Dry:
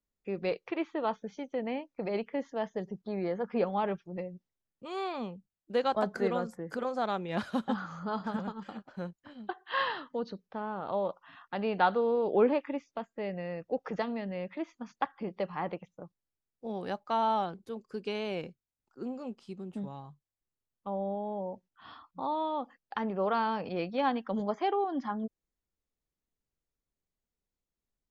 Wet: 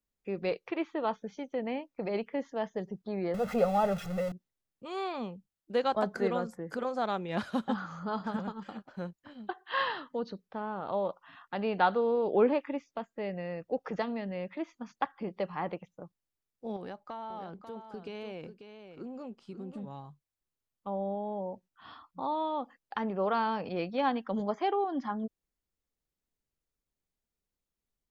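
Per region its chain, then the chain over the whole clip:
0:03.34–0:04.32: converter with a step at zero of −36 dBFS + high-shelf EQ 2,000 Hz −6.5 dB + comb filter 1.5 ms, depth 93%
0:16.76–0:19.91: high-shelf EQ 4,400 Hz −6.5 dB + downward compressor 8 to 1, threshold −37 dBFS + single-tap delay 541 ms −9 dB
whole clip: no processing

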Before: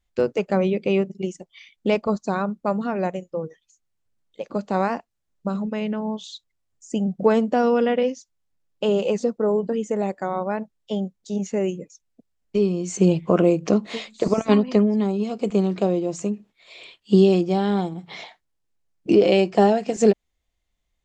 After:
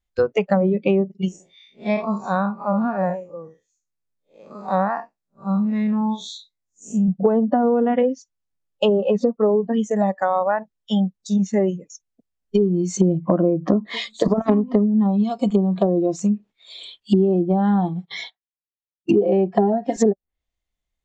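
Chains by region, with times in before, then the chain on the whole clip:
0:01.28–0:07.09: spectrum smeared in time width 130 ms + parametric band 64 Hz −7 dB 0.96 octaves + notch filter 3,000 Hz, Q 7.3
0:17.88–0:19.74: noise gate −43 dBFS, range −19 dB + notch comb filter 300 Hz
whole clip: noise reduction from a noise print of the clip's start 15 dB; treble cut that deepens with the level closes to 760 Hz, closed at −17 dBFS; downward compressor 6 to 1, threshold −23 dBFS; level +9 dB

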